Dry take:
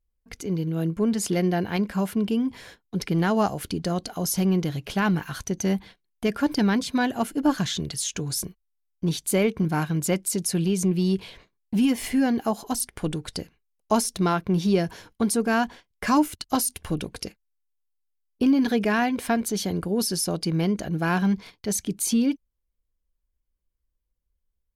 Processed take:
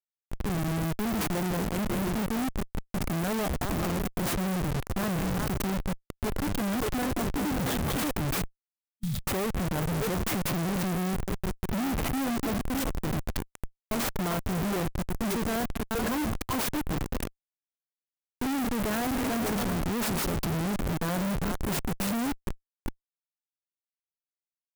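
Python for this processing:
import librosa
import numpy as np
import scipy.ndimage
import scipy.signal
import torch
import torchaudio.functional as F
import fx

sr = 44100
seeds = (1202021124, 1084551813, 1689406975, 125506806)

y = fx.hum_notches(x, sr, base_hz=50, count=10, at=(16.92, 18.62), fade=0.02)
y = fx.echo_stepped(y, sr, ms=195, hz=2900.0, octaves=-1.4, feedback_pct=70, wet_db=-0.5)
y = fx.dynamic_eq(y, sr, hz=870.0, q=6.6, threshold_db=-45.0, ratio=4.0, max_db=-5)
y = fx.schmitt(y, sr, flips_db=-27.0)
y = fx.spec_repair(y, sr, seeds[0], start_s=8.62, length_s=0.61, low_hz=220.0, high_hz=3200.0, source='before')
y = fx.clock_jitter(y, sr, seeds[1], jitter_ms=0.048)
y = y * 10.0 ** (-3.0 / 20.0)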